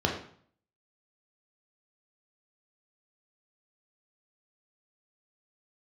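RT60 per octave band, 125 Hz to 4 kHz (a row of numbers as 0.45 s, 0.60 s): 0.70 s, 0.60 s, 0.55 s, 0.55 s, 0.50 s, 0.45 s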